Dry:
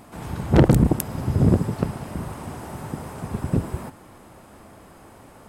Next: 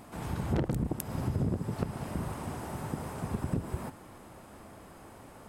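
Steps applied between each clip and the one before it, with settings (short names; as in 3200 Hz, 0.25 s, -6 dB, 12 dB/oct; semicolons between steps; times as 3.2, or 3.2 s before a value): compressor 5:1, threshold -24 dBFS, peak gain reduction 13.5 dB; gain -3.5 dB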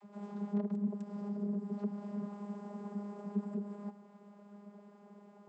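dynamic EQ 2300 Hz, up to -5 dB, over -60 dBFS, Q 0.86; vocoder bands 32, saw 204 Hz; gain -3 dB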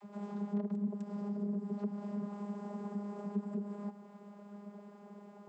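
compressor 1.5:1, threshold -44 dBFS, peak gain reduction 5.5 dB; gain +4 dB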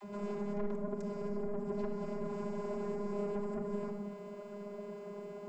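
soft clip -38 dBFS, distortion -9 dB; shoebox room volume 3400 m³, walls furnished, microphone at 3.1 m; gain +6 dB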